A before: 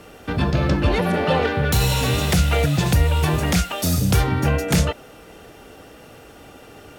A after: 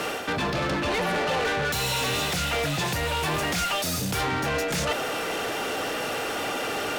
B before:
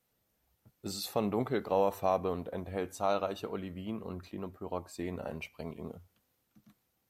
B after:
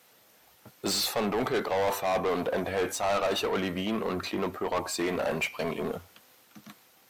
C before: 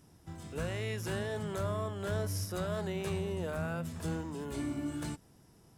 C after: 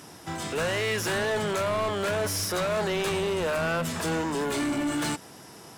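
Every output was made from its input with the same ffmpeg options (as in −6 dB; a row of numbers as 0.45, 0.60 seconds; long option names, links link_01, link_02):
-filter_complex "[0:a]highpass=70,areverse,acompressor=threshold=-32dB:ratio=6,areverse,asplit=2[link_01][link_02];[link_02]highpass=frequency=720:poles=1,volume=24dB,asoftclip=type=tanh:threshold=-23.5dB[link_03];[link_01][link_03]amix=inputs=2:normalize=0,lowpass=frequency=6600:poles=1,volume=-6dB,volume=4dB"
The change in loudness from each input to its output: −6.0, +6.0, +9.0 LU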